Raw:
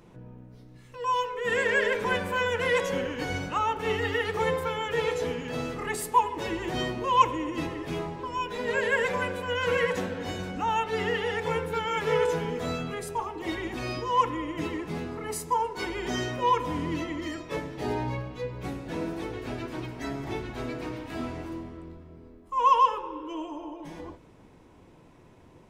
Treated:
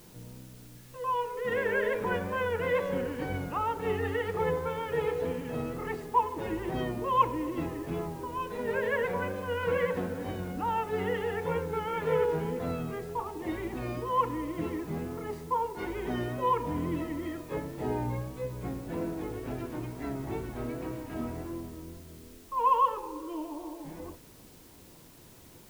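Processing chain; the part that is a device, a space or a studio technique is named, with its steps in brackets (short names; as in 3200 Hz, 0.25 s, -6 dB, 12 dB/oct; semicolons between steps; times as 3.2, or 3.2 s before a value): cassette deck with a dirty head (tape spacing loss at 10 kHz 37 dB; wow and flutter; white noise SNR 25 dB)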